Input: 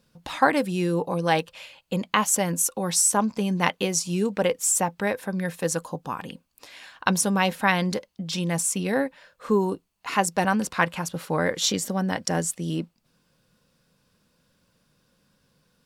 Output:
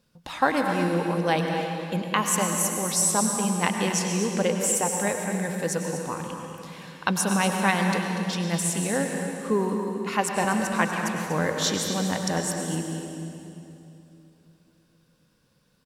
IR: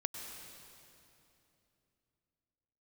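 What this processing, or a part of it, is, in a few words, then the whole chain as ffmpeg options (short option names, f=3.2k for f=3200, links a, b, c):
cave: -filter_complex "[0:a]aecho=1:1:241:0.299[a];[1:a]atrim=start_sample=2205[b];[a][b]afir=irnorm=-1:irlink=0,volume=-1.5dB"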